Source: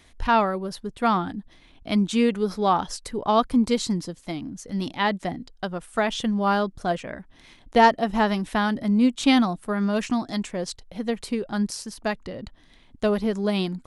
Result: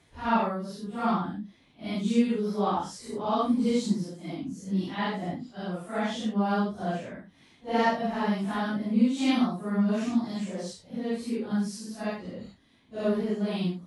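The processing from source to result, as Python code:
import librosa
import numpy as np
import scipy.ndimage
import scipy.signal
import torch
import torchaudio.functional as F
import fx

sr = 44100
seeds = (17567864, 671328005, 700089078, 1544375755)

y = fx.phase_scramble(x, sr, seeds[0], window_ms=200)
y = scipy.signal.sosfilt(scipy.signal.butter(2, 120.0, 'highpass', fs=sr, output='sos'), y)
y = fx.low_shelf(y, sr, hz=290.0, db=9.0)
y = y * 10.0 ** (-7.5 / 20.0)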